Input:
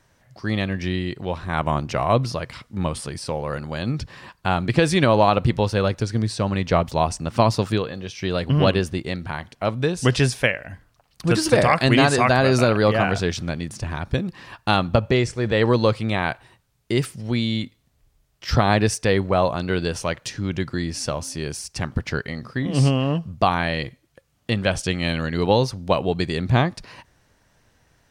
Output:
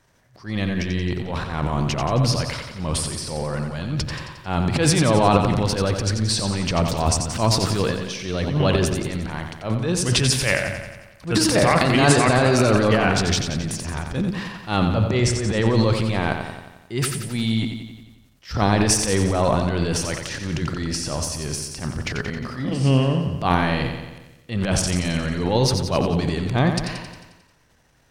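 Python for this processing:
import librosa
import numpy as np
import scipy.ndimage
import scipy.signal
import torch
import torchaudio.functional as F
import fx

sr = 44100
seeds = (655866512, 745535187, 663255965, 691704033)

p1 = fx.transient(x, sr, attack_db=-11, sustain_db=11)
p2 = p1 + fx.echo_feedback(p1, sr, ms=89, feedback_pct=59, wet_db=-7.0, dry=0)
y = p2 * 10.0 ** (-1.0 / 20.0)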